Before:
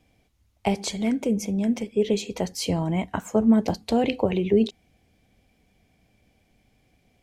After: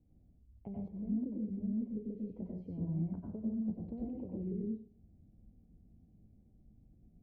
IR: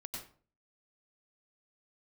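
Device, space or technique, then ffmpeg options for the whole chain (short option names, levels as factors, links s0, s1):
television next door: -filter_complex "[0:a]acompressor=threshold=0.0178:ratio=6,lowpass=270[s0];[1:a]atrim=start_sample=2205[s1];[s0][s1]afir=irnorm=-1:irlink=0,asettb=1/sr,asplit=3[s2][s3][s4];[s2]atrim=end=0.884[s5];[s3]atrim=start=0.88:end=1.36,asetpts=PTS-STARTPTS,afade=t=in:d=0.004:c=qsin,afade=t=out:st=0.476:d=0.004:c=qsin,lowpass=1800[s6];[s4]atrim=start=1.356[s7];[s5][s6]acrossfade=d=0.004:c1=hsin:c2=qsin[s8];[s8][s7]acrossfade=d=0.004:c1=qsin:c2=hsin,volume=1.33"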